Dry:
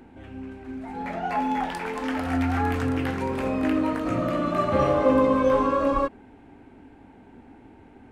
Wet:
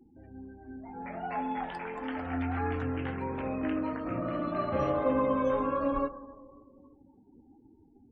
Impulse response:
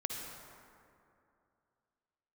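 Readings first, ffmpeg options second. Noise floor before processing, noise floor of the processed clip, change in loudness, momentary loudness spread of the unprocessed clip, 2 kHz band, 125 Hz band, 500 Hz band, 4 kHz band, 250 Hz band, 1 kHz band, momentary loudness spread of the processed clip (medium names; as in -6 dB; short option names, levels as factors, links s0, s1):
-51 dBFS, -61 dBFS, -7.5 dB, 16 LU, -8.0 dB, -7.0 dB, -7.5 dB, -11.5 dB, -7.5 dB, -7.5 dB, 18 LU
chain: -filter_complex "[0:a]asplit=2[s0][s1];[1:a]atrim=start_sample=2205,adelay=136[s2];[s1][s2]afir=irnorm=-1:irlink=0,volume=0.133[s3];[s0][s3]amix=inputs=2:normalize=0,flanger=delay=6:depth=1.1:regen=85:speed=0.25:shape=triangular,afftdn=nr=36:nf=-47,volume=0.708"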